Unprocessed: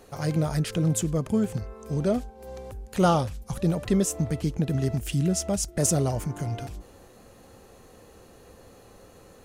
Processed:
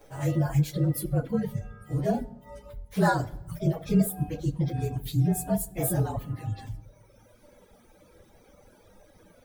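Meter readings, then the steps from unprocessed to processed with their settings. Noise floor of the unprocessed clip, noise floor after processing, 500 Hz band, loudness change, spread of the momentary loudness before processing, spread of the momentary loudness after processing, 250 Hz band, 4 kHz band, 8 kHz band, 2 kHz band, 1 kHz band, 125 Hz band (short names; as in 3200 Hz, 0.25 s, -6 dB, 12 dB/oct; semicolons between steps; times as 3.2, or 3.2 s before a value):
-52 dBFS, -58 dBFS, -3.5 dB, -2.0 dB, 12 LU, 13 LU, -2.0 dB, -7.5 dB, -8.0 dB, +2.0 dB, -1.5 dB, -0.5 dB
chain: inharmonic rescaling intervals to 112%; shoebox room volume 320 m³, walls mixed, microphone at 0.66 m; reverb removal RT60 1.5 s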